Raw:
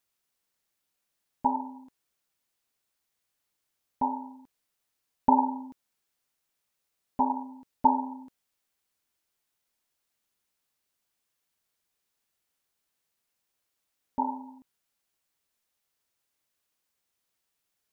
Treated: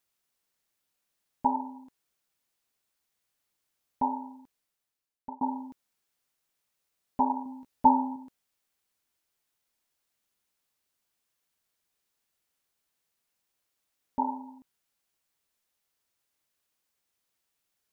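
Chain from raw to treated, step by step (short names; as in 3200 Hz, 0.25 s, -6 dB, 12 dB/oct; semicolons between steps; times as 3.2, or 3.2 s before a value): 4.39–5.41 fade out; 7.44–8.16 doubler 16 ms -3.5 dB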